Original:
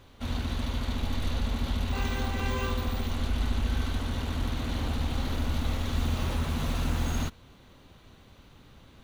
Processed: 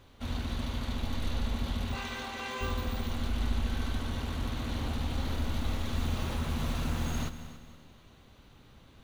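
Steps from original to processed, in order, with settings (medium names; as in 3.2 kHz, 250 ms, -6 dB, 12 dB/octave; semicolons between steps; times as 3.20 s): 1.95–2.61 s: frequency weighting A; on a send: multi-head delay 94 ms, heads second and third, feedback 41%, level -15 dB; on the sum: trim -3 dB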